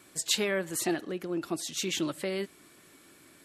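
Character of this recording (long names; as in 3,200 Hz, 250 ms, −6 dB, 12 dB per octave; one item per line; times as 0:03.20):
background noise floor −58 dBFS
spectral slope −2.5 dB per octave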